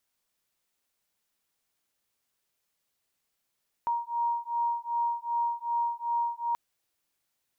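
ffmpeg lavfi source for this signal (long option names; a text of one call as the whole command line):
ffmpeg -f lavfi -i "aevalsrc='0.0316*(sin(2*PI*940*t)+sin(2*PI*942.6*t))':duration=2.68:sample_rate=44100" out.wav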